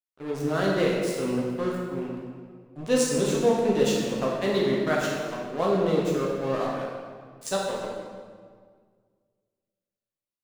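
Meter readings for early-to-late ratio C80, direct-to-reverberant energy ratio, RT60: 2.0 dB, −4.0 dB, 1.8 s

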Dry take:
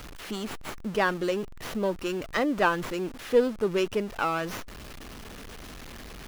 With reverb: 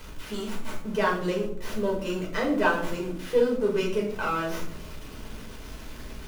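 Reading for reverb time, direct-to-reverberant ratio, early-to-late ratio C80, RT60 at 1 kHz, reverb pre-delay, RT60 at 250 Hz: 0.65 s, −3.5 dB, 10.0 dB, 0.55 s, 4 ms, 1.1 s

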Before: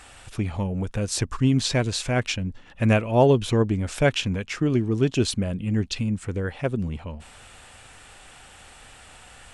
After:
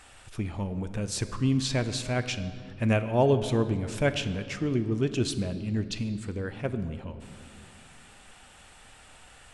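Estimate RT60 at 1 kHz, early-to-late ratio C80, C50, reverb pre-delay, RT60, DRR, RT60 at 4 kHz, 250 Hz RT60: 2.1 s, 12.5 dB, 11.5 dB, 3 ms, 2.3 s, 10.0 dB, 1.5 s, 3.5 s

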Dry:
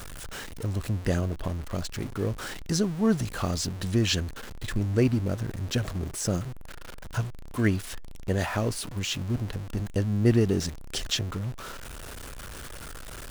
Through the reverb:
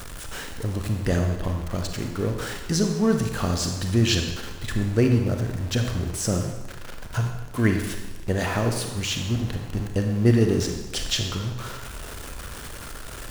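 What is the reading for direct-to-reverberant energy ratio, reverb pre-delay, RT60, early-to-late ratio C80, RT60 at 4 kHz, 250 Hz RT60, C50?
4.0 dB, 31 ms, 1.2 s, 7.0 dB, 1.1 s, 1.2 s, 5.5 dB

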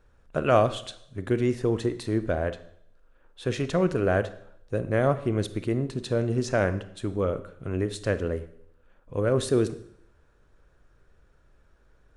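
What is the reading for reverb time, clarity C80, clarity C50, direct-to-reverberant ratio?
0.70 s, 17.5 dB, 14.5 dB, 12.0 dB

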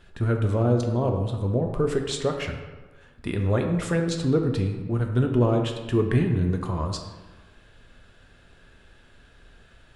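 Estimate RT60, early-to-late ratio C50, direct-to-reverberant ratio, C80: 1.3 s, 6.0 dB, 3.0 dB, 8.0 dB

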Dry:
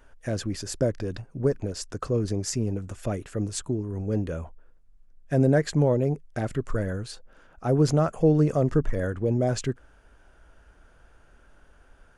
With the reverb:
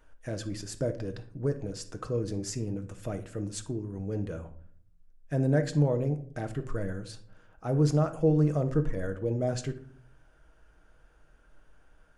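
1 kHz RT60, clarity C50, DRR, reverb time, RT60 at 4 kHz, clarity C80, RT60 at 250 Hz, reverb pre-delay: 0.40 s, 13.0 dB, 7.0 dB, 0.50 s, 0.30 s, 18.0 dB, 0.80 s, 6 ms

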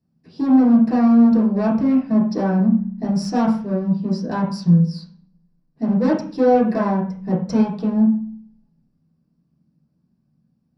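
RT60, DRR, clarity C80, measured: 0.45 s, −7.0 dB, 10.0 dB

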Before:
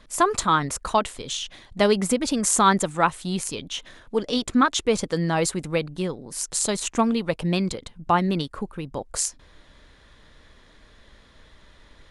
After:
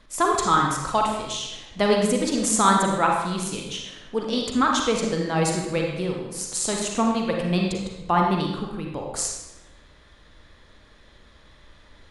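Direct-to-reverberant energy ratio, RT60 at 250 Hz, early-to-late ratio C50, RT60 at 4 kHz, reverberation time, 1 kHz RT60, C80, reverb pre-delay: 0.0 dB, 1.2 s, 1.5 dB, 0.80 s, 1.0 s, 0.95 s, 4.5 dB, 37 ms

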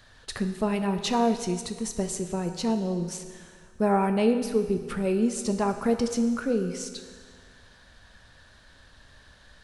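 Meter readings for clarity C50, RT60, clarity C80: 8.5 dB, 1.7 s, 10.0 dB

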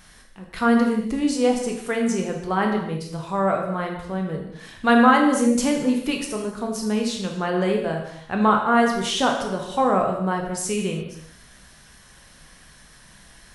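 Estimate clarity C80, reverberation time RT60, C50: 7.5 dB, non-exponential decay, 5.0 dB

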